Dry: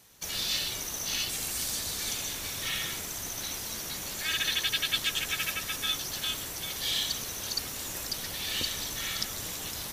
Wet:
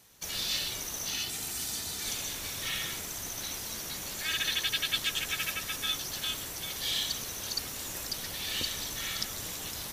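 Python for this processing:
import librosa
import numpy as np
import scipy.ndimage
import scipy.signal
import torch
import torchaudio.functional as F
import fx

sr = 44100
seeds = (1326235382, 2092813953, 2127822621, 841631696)

y = fx.notch_comb(x, sr, f0_hz=550.0, at=(1.1, 2.05))
y = y * librosa.db_to_amplitude(-1.5)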